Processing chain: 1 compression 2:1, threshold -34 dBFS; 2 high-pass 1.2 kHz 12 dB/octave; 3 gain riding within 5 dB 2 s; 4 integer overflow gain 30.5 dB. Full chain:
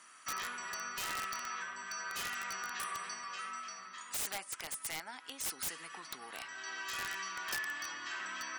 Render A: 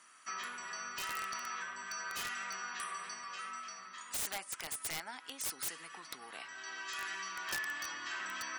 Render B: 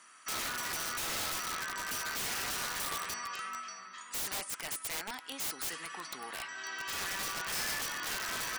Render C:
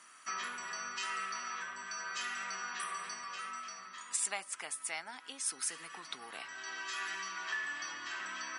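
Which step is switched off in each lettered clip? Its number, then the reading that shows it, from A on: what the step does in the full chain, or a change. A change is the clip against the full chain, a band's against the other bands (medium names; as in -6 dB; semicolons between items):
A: 3, momentary loudness spread change +1 LU; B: 1, mean gain reduction 4.5 dB; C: 4, distortion -3 dB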